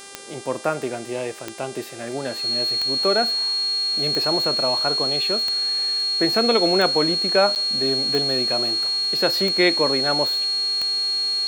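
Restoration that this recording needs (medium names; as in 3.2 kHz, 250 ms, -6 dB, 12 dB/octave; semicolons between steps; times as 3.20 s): de-click; de-hum 396.4 Hz, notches 27; band-stop 4.3 kHz, Q 30; interpolate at 7.55 s, 8.9 ms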